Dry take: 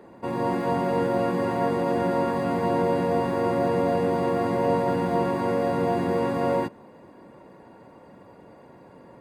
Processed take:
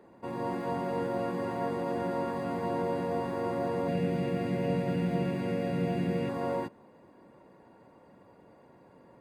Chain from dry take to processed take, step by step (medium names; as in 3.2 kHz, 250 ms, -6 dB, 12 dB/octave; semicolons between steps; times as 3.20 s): 3.88–6.29 s: fifteen-band graphic EQ 160 Hz +11 dB, 1 kHz -11 dB, 2.5 kHz +8 dB; trim -8 dB